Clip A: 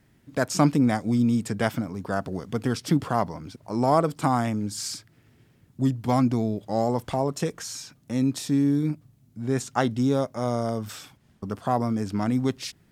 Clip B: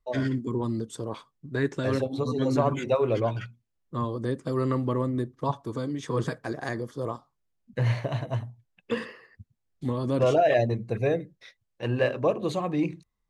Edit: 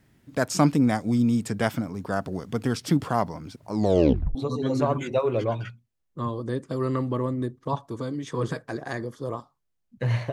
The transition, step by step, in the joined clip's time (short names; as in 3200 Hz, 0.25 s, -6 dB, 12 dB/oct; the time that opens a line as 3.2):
clip A
3.73 tape stop 0.62 s
4.35 switch to clip B from 2.11 s